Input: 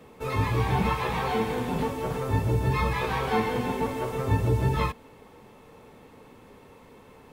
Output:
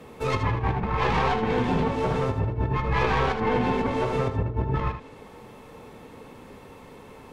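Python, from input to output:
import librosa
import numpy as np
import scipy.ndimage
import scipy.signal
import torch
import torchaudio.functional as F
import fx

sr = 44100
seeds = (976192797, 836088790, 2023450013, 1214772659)

p1 = fx.tracing_dist(x, sr, depth_ms=0.14)
p2 = fx.env_lowpass_down(p1, sr, base_hz=1600.0, full_db=-20.0)
p3 = fx.over_compress(p2, sr, threshold_db=-27.0, ratio=-0.5)
p4 = p3 + fx.echo_single(p3, sr, ms=77, db=-8.5, dry=0)
p5 = fx.end_taper(p4, sr, db_per_s=190.0)
y = p5 * librosa.db_to_amplitude(3.0)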